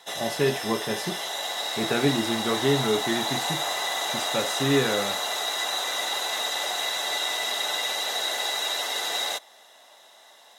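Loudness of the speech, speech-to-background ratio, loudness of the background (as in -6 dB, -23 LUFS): -27.5 LUFS, -0.5 dB, -27.0 LUFS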